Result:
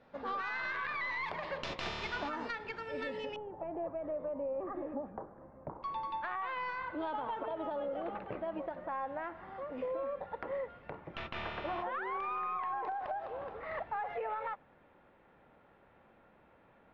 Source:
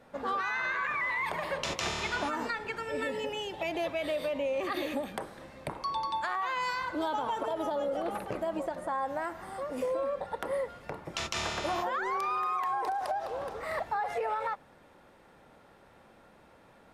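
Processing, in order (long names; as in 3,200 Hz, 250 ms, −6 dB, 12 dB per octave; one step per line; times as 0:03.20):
stylus tracing distortion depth 0.13 ms
low-pass filter 4,900 Hz 24 dB per octave, from 0:03.36 1,200 Hz, from 0:05.83 3,000 Hz
level −5.5 dB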